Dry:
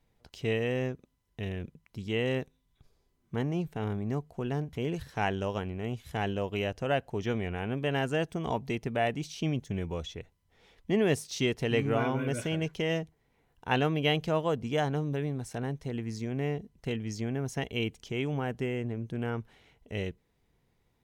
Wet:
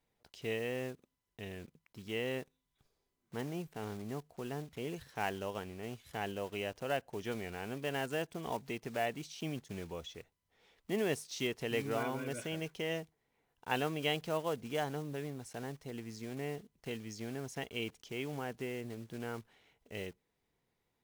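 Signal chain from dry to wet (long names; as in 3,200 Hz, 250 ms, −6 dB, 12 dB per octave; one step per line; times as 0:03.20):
one scale factor per block 5 bits
low-shelf EQ 160 Hz −11 dB
level −5.5 dB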